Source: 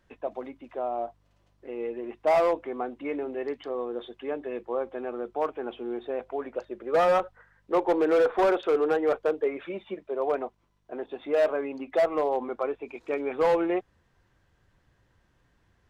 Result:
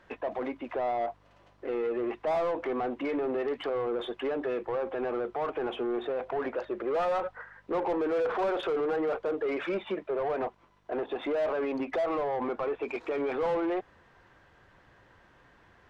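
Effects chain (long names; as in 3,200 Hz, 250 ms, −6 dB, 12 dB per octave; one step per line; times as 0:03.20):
brickwall limiter −29 dBFS, peak gain reduction 11.5 dB
mid-hump overdrive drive 15 dB, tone 3,800 Hz, clips at −29 dBFS
high-shelf EQ 2,900 Hz −9.5 dB
level +5.5 dB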